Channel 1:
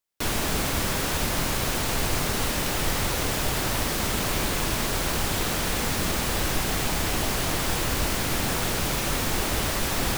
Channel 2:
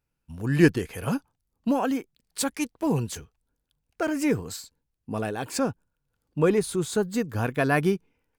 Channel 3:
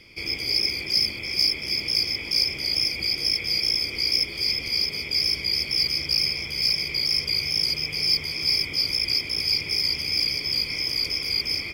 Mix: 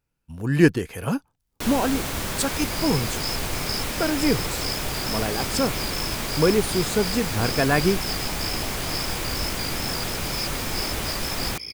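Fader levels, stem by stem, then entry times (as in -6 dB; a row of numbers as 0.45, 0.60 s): -2.5, +2.0, -9.5 dB; 1.40, 0.00, 2.30 s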